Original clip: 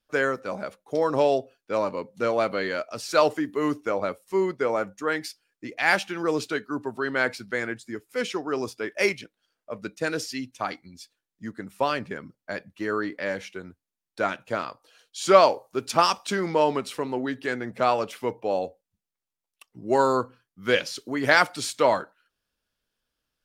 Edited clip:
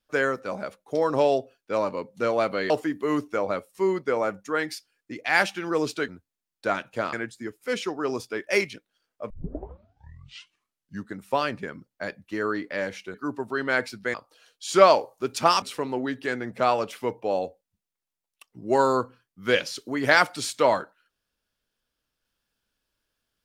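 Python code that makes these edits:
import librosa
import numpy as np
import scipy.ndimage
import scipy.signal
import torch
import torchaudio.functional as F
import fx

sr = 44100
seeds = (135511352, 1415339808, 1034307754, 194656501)

y = fx.edit(x, sr, fx.cut(start_s=2.7, length_s=0.53),
    fx.swap(start_s=6.61, length_s=1.0, other_s=13.62, other_length_s=1.05),
    fx.tape_start(start_s=9.78, length_s=1.85),
    fx.cut(start_s=16.15, length_s=0.67), tone=tone)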